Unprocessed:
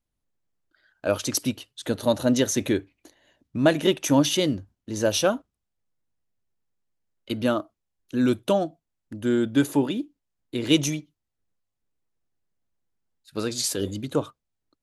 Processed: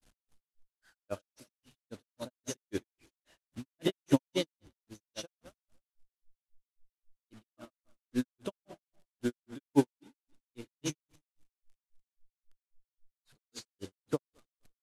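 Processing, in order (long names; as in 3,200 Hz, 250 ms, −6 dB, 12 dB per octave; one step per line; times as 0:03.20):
linear delta modulator 64 kbit/s, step −30.5 dBFS
on a send: repeating echo 105 ms, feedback 47%, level −8.5 dB
on the sum: granular cloud 143 ms, grains 3.7 per second, spray 23 ms, pitch spread up and down by 0 semitones
expander for the loud parts 2.5 to 1, over −36 dBFS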